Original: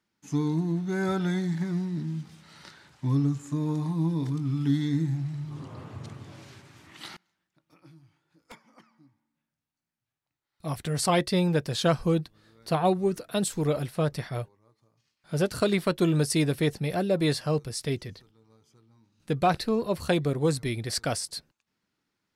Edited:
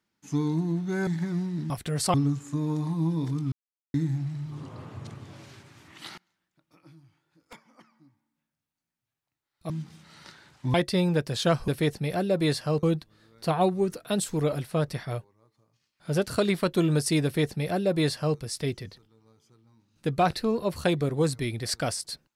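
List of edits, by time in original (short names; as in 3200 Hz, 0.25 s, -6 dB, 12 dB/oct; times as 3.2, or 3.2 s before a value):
1.07–1.46 cut
2.09–3.13 swap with 10.69–11.13
4.51–4.93 mute
16.48–17.63 copy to 12.07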